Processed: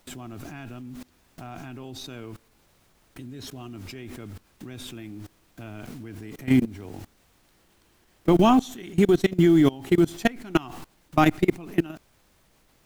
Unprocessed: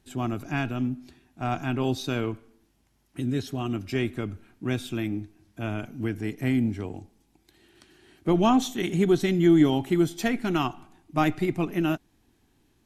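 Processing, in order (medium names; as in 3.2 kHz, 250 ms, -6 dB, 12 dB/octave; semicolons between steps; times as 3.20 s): added noise pink -51 dBFS; companded quantiser 8-bit; level held to a coarse grid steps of 23 dB; trim +7 dB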